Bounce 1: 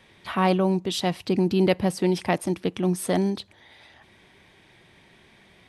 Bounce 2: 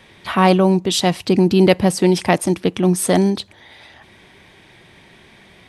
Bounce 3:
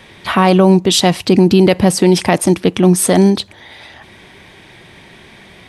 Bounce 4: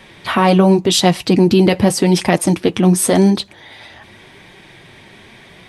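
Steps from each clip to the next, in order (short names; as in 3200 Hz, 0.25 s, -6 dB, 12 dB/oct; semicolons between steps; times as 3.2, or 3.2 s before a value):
dynamic EQ 7500 Hz, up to +5 dB, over -47 dBFS, Q 1.2; gain +8 dB
limiter -8 dBFS, peak gain reduction 6.5 dB; gain +6.5 dB
flange 0.87 Hz, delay 5 ms, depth 4.9 ms, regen -40%; gain +2.5 dB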